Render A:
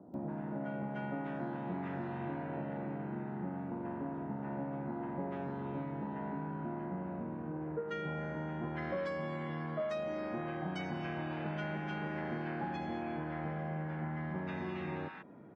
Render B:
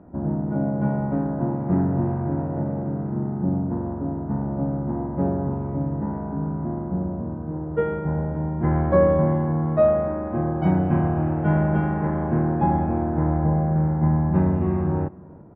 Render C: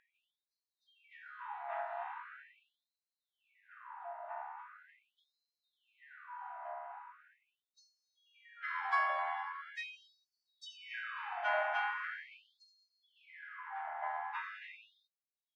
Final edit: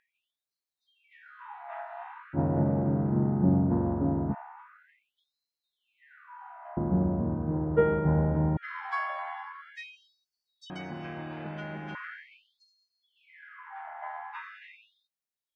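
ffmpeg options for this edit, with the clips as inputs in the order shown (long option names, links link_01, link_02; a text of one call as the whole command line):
ffmpeg -i take0.wav -i take1.wav -i take2.wav -filter_complex "[1:a]asplit=2[link_01][link_02];[2:a]asplit=4[link_03][link_04][link_05][link_06];[link_03]atrim=end=2.39[link_07];[link_01]atrim=start=2.33:end=4.35[link_08];[link_04]atrim=start=4.29:end=6.772[link_09];[link_02]atrim=start=6.768:end=8.572[link_10];[link_05]atrim=start=8.568:end=10.702[link_11];[0:a]atrim=start=10.698:end=11.952[link_12];[link_06]atrim=start=11.948[link_13];[link_07][link_08]acrossfade=duration=0.06:curve1=tri:curve2=tri[link_14];[link_14][link_09]acrossfade=duration=0.06:curve1=tri:curve2=tri[link_15];[link_15][link_10]acrossfade=duration=0.004:curve1=hsin:curve2=hsin[link_16];[link_16][link_11]acrossfade=duration=0.004:curve1=hsin:curve2=hsin[link_17];[link_17][link_12]acrossfade=duration=0.004:curve1=hsin:curve2=hsin[link_18];[link_18][link_13]acrossfade=duration=0.004:curve1=hsin:curve2=hsin" out.wav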